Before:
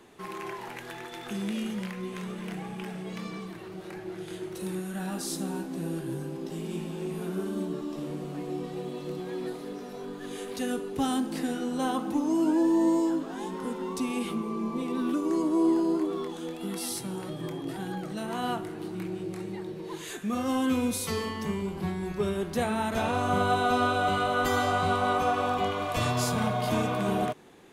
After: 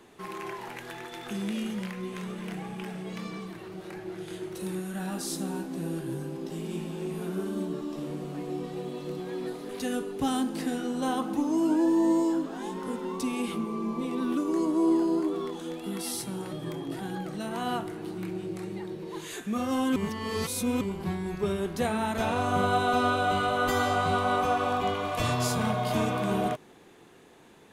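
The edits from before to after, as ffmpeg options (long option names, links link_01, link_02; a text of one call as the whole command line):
ffmpeg -i in.wav -filter_complex "[0:a]asplit=4[link_01][link_02][link_03][link_04];[link_01]atrim=end=9.692[link_05];[link_02]atrim=start=10.458:end=20.732[link_06];[link_03]atrim=start=20.728:end=21.582,asetpts=PTS-STARTPTS,areverse[link_07];[link_04]atrim=start=21.578[link_08];[link_05][link_06]acrossfade=duration=0.004:curve1=hsin:curve2=hsin[link_09];[link_09][link_07]acrossfade=duration=0.004:curve1=hsin:curve2=hsin[link_10];[link_10][link_08]acrossfade=duration=0.004:curve1=hsin:curve2=hsin" out.wav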